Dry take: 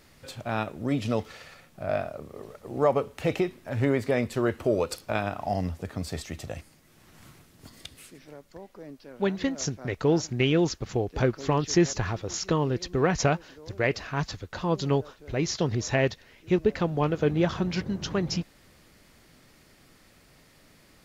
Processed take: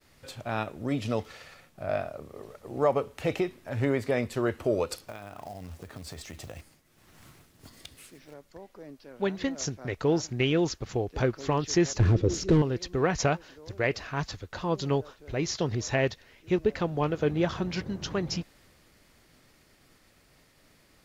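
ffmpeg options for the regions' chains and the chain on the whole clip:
ffmpeg -i in.wav -filter_complex "[0:a]asettb=1/sr,asplit=3[link_01][link_02][link_03];[link_01]atrim=end=5.074[link_04];[link_02]atrim=start=5.07:end=8.34,asetpts=PTS-STARTPTS,afade=type=in:duration=0.004:curve=qsin,afade=type=out:start_time=3.266:duration=0.004:curve=qsin,acrusher=bits=4:mode=log:mix=0:aa=0.000001,acompressor=threshold=-34dB:ratio=12:attack=3.2:release=140:knee=1:detection=peak[link_05];[link_03]atrim=start=8.336[link_06];[link_04][link_05]acrossfade=duration=0.004:curve1=hsin:curve2=qsin[link_07];[link_07][link_06]acrossfade=duration=0.004:curve1=qsin:curve2=hsin,asettb=1/sr,asplit=3[link_08][link_09][link_10];[link_08]atrim=end=12.004[link_11];[link_09]atrim=start=12:end=12.62,asetpts=PTS-STARTPTS,afade=type=in:duration=0.004:curve=qsin,afade=type=out:start_time=0.616:duration=0.004:curve=qsin,volume=27.5dB,asoftclip=hard,volume=-27.5dB,lowpass=9300,lowshelf=frequency=570:width_type=q:width=1.5:gain=13.5[link_12];[link_10]atrim=start=12.616[link_13];[link_11][link_12]acrossfade=duration=0.004:curve1=hsin:curve2=qsin[link_14];[link_14][link_13]acrossfade=duration=0.004:curve1=qsin:curve2=hsin,agate=range=-33dB:threshold=-54dB:ratio=3:detection=peak,equalizer=frequency=190:width=1.5:gain=-2.5,volume=-1.5dB" out.wav

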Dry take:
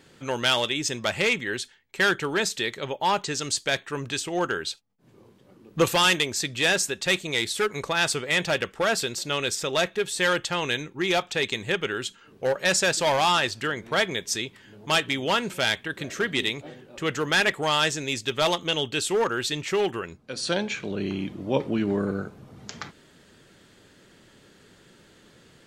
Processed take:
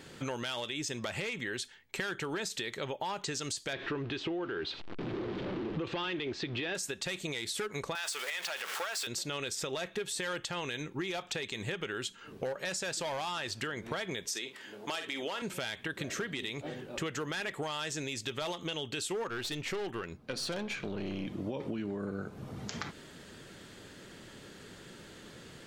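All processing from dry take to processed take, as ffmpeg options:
ffmpeg -i in.wav -filter_complex "[0:a]asettb=1/sr,asplit=3[link_01][link_02][link_03];[link_01]atrim=end=3.734[link_04];[link_02]atrim=start=3.73:end=6.75,asetpts=PTS-STARTPTS,afade=type=in:duration=0.004:curve=qsin,afade=type=out:start_time=3.016:duration=0.004:curve=qsin,aeval=exprs='val(0)+0.5*0.015*sgn(val(0))':channel_layout=same,lowpass=frequency=3800:width=0.5412,lowpass=frequency=3800:width=1.3066,equalizer=frequency=340:width=2.5:gain=9[link_05];[link_03]atrim=start=6.746[link_06];[link_04][link_05]acrossfade=duration=0.004:curve1=hsin:curve2=qsin[link_07];[link_07][link_06]acrossfade=duration=0.004:curve1=qsin:curve2=hsin,asettb=1/sr,asplit=3[link_08][link_09][link_10];[link_08]atrim=end=7.954[link_11];[link_09]atrim=start=7.95:end=9.07,asetpts=PTS-STARTPTS,afade=type=in:duration=0.004:curve=qsin,afade=type=out:start_time=1.116:duration=0.004:curve=qsin,aeval=exprs='val(0)+0.5*0.0376*sgn(val(0))':channel_layout=same,highpass=870[link_12];[link_10]atrim=start=9.066[link_13];[link_11][link_12]acrossfade=duration=0.004:curve1=hsin:curve2=qsin[link_14];[link_14][link_13]acrossfade=duration=0.004:curve1=qsin:curve2=hsin,asettb=1/sr,asplit=3[link_15][link_16][link_17];[link_15]atrim=end=14.274[link_18];[link_16]atrim=start=14.27:end=15.42,asetpts=PTS-STARTPTS,afade=type=in:duration=0.004:curve=qsin,afade=type=out:start_time=1.146:duration=0.004:curve=qsin,highpass=330,asplit=2[link_19][link_20];[link_20]adelay=48,volume=-13dB[link_21];[link_19][link_21]amix=inputs=2:normalize=0,atrim=end_sample=50715[link_22];[link_17]atrim=start=15.416[link_23];[link_18][link_22]acrossfade=duration=0.004:curve1=hsin:curve2=qsin[link_24];[link_24][link_23]acrossfade=duration=0.004:curve1=qsin:curve2=hsin,asettb=1/sr,asplit=3[link_25][link_26][link_27];[link_25]atrim=end=19.284[link_28];[link_26]atrim=start=19.28:end=21.27,asetpts=PTS-STARTPTS,afade=type=in:duration=0.004:curve=qsin,afade=type=out:start_time=1.986:duration=0.004:curve=qsin,equalizer=frequency=7500:width=1.3:gain=-5,aeval=exprs='(tanh(20*val(0)+0.4)-tanh(0.4))/20':channel_layout=same[link_29];[link_27]atrim=start=21.266[link_30];[link_28][link_29]acrossfade=duration=0.004:curve1=hsin:curve2=qsin[link_31];[link_31][link_30]acrossfade=duration=0.004:curve1=qsin:curve2=hsin,alimiter=limit=-20.5dB:level=0:latency=1:release=67,acompressor=threshold=-38dB:ratio=6,volume=4dB" out.wav

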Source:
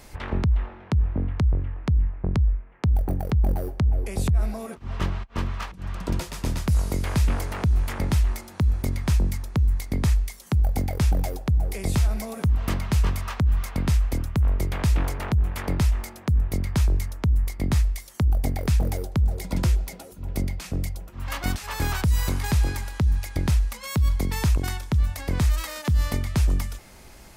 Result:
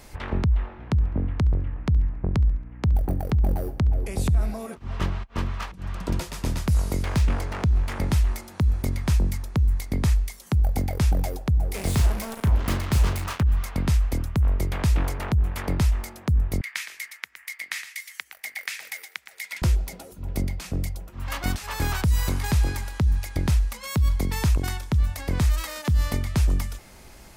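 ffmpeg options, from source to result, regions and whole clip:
ffmpeg -i in.wav -filter_complex "[0:a]asettb=1/sr,asplit=3[link_01][link_02][link_03];[link_01]atrim=end=0.784[link_04];[link_02]atrim=start=0.78:end=4.53,asetpts=PTS-STARTPTS,afade=type=in:duration=0.004:curve=qsin,afade=type=out:start_time=3.746:duration=0.004:curve=qsin,aeval=exprs='val(0)+0.0112*(sin(2*PI*60*n/s)+sin(2*PI*2*60*n/s)/2+sin(2*PI*3*60*n/s)/3+sin(2*PI*4*60*n/s)/4+sin(2*PI*5*60*n/s)/5)':channel_layout=same,aecho=1:1:69|138|207|276:0.0794|0.0413|0.0215|0.0112,atrim=end_sample=165375[link_05];[link_03]atrim=start=4.526[link_06];[link_04][link_05]acrossfade=duration=0.004:curve1=hsin:curve2=qsin[link_07];[link_07][link_06]acrossfade=duration=0.004:curve1=qsin:curve2=hsin,asettb=1/sr,asplit=3[link_08][link_09][link_10];[link_08]atrim=end=7.034[link_11];[link_09]atrim=start=7.03:end=7.92,asetpts=PTS-STARTPTS,afade=type=in:duration=0.004:curve=qsin,afade=type=out:start_time=0.886:duration=0.004:curve=qsin,adynamicsmooth=sensitivity=6.5:basefreq=3600,highshelf=frequency=8500:gain=10.5[link_12];[link_10]atrim=start=7.916[link_13];[link_11][link_12]acrossfade=duration=0.004:curve1=hsin:curve2=qsin[link_14];[link_14][link_13]acrossfade=duration=0.004:curve1=qsin:curve2=hsin,asettb=1/sr,asplit=3[link_15][link_16][link_17];[link_15]atrim=end=11.744[link_18];[link_16]atrim=start=11.74:end=13.43,asetpts=PTS-STARTPTS,afade=type=in:duration=0.004:curve=qsin,afade=type=out:start_time=1.686:duration=0.004:curve=qsin,acrusher=bits=4:mix=0:aa=0.5,asplit=2[link_19][link_20];[link_20]adelay=35,volume=-9.5dB[link_21];[link_19][link_21]amix=inputs=2:normalize=0,atrim=end_sample=74529[link_22];[link_17]atrim=start=13.426[link_23];[link_18][link_22]acrossfade=duration=0.004:curve1=hsin:curve2=qsin[link_24];[link_24][link_23]acrossfade=duration=0.004:curve1=qsin:curve2=hsin,asettb=1/sr,asplit=3[link_25][link_26][link_27];[link_25]atrim=end=16.614[link_28];[link_26]atrim=start=16.61:end=19.62,asetpts=PTS-STARTPTS,afade=type=in:duration=0.004:curve=qsin,afade=type=out:start_time=3.006:duration=0.004:curve=qsin,highpass=frequency=2000:width_type=q:width=3.4,aecho=1:1:115:0.282,atrim=end_sample=132741[link_29];[link_27]atrim=start=19.616[link_30];[link_28][link_29]acrossfade=duration=0.004:curve1=hsin:curve2=qsin[link_31];[link_31][link_30]acrossfade=duration=0.004:curve1=qsin:curve2=hsin" out.wav

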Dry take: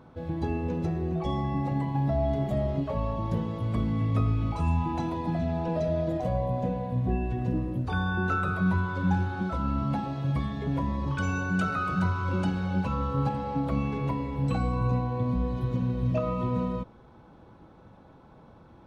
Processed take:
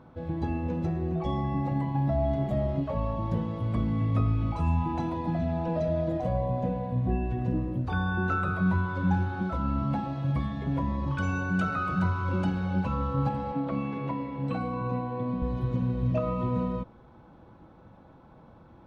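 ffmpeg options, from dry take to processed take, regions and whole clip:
ffmpeg -i in.wav -filter_complex "[0:a]asettb=1/sr,asplit=3[link_01][link_02][link_03];[link_01]atrim=end=13.524[link_04];[link_02]atrim=start=13.52:end=15.42,asetpts=PTS-STARTPTS,afade=type=in:duration=0.004:curve=qsin,afade=type=out:start_time=1.896:duration=0.004:curve=qsin,highpass=170,lowpass=4500,bandreject=frequency=810:width=18[link_05];[link_03]atrim=start=15.416[link_06];[link_04][link_05]acrossfade=duration=0.004:curve1=hsin:curve2=qsin[link_07];[link_07][link_06]acrossfade=duration=0.004:curve1=qsin:curve2=hsin,highshelf=frequency=4500:gain=-8.5,bandreject=frequency=420:width=13" out.wav

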